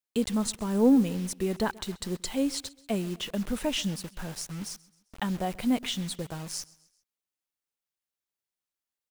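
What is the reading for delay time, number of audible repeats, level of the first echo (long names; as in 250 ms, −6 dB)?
132 ms, 2, −22.5 dB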